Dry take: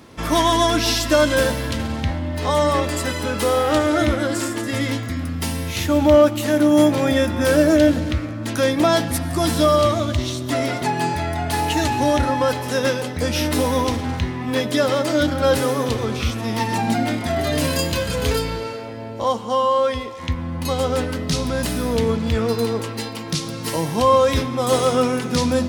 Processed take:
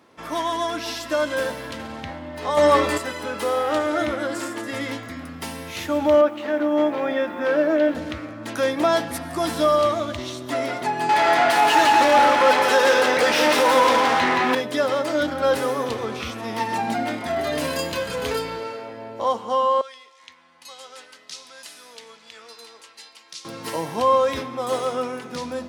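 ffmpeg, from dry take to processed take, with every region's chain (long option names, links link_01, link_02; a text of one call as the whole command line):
ffmpeg -i in.wav -filter_complex "[0:a]asettb=1/sr,asplit=3[link_01][link_02][link_03];[link_01]atrim=end=2.574[link_04];[link_02]atrim=start=2.57:end=2.98,asetpts=PTS-STARTPTS,afade=type=in:duration=0.004:curve=qsin,afade=type=out:start_time=0.406:duration=0.004:curve=qsin,asplit=2[link_05][link_06];[link_06]adelay=14,volume=-2.5dB[link_07];[link_05][link_07]amix=inputs=2:normalize=0,atrim=end_sample=18081,acontrast=53[link_08];[link_03]atrim=start=2.976[link_09];[link_04][link_08]acrossfade=duration=0.004:curve1=hsin:curve2=qsin[link_10];[link_10][link_09]acrossfade=duration=0.004:curve1=qsin:curve2=hsin,asettb=1/sr,asplit=3[link_11][link_12][link_13];[link_11]atrim=end=6.214[link_14];[link_12]atrim=start=6.21:end=7.95,asetpts=PTS-STARTPTS,afade=type=in:duration=0.004:curve=qsin,afade=type=out:start_time=1.736:duration=0.004:curve=qsin,highpass=230,lowpass=2900,acrusher=bits=9:dc=4:mix=0:aa=0.000001[link_15];[link_13]atrim=start=7.946[link_16];[link_14][link_15]acrossfade=duration=0.004:curve1=hsin:curve2=qsin[link_17];[link_17][link_16]acrossfade=duration=0.004:curve1=qsin:curve2=hsin,asettb=1/sr,asplit=3[link_18][link_19][link_20];[link_18]atrim=end=11.094[link_21];[link_19]atrim=start=11.09:end=14.55,asetpts=PTS-STARTPTS,afade=type=in:duration=0.004:curve=qsin,afade=type=out:start_time=3.456:duration=0.004:curve=qsin,highpass=frequency=160:poles=1,asplit=2[link_22][link_23];[link_23]highpass=frequency=720:poles=1,volume=26dB,asoftclip=type=tanh:threshold=-8dB[link_24];[link_22][link_24]amix=inputs=2:normalize=0,lowpass=frequency=4100:poles=1,volume=-6dB,aecho=1:1:172:0.631,atrim=end_sample=152586[link_25];[link_20]atrim=start=14.546[link_26];[link_21][link_25]acrossfade=duration=0.004:curve1=hsin:curve2=qsin[link_27];[link_27][link_26]acrossfade=duration=0.004:curve1=qsin:curve2=hsin,asettb=1/sr,asplit=3[link_28][link_29][link_30];[link_28]atrim=end=19.814[link_31];[link_29]atrim=start=19.81:end=23.45,asetpts=PTS-STARTPTS,afade=type=in:duration=0.004:curve=qsin,afade=type=out:start_time=3.636:duration=0.004:curve=qsin,lowpass=6900,aderivative[link_32];[link_30]atrim=start=23.446[link_33];[link_31][link_32]acrossfade=duration=0.004:curve1=hsin:curve2=qsin[link_34];[link_34][link_33]acrossfade=duration=0.004:curve1=qsin:curve2=hsin,highpass=frequency=720:poles=1,highshelf=frequency=2200:gain=-10.5,dynaudnorm=framelen=260:gausssize=11:maxgain=6dB,volume=-3dB" out.wav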